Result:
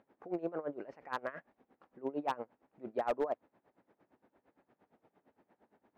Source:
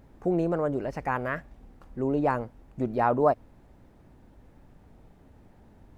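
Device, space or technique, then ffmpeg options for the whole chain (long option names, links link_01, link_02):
helicopter radio: -af "highpass=340,lowpass=2600,aeval=exprs='val(0)*pow(10,-20*(0.5-0.5*cos(2*PI*8.7*n/s))/20)':channel_layout=same,asoftclip=type=hard:threshold=-22.5dB,volume=-3dB"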